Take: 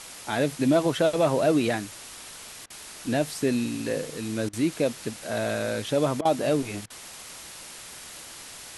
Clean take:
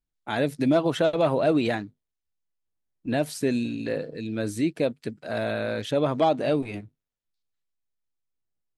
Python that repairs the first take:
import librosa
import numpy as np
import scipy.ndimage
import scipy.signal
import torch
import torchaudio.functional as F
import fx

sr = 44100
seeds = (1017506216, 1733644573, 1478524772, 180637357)

y = fx.fix_interpolate(x, sr, at_s=(2.66, 4.49, 6.21, 6.86), length_ms=40.0)
y = fx.noise_reduce(y, sr, print_start_s=2.36, print_end_s=2.86, reduce_db=30.0)